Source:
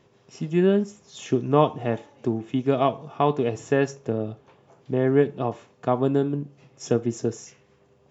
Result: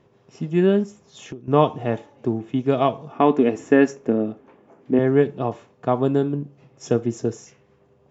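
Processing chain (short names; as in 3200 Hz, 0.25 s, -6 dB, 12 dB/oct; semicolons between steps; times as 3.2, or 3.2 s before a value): 0.85–1.48 compressor 6:1, threshold -36 dBFS, peak gain reduction 18 dB; 3.12–4.99 ten-band EQ 125 Hz -11 dB, 250 Hz +11 dB, 2000 Hz +5 dB, 4000 Hz -5 dB; mismatched tape noise reduction decoder only; gain +2 dB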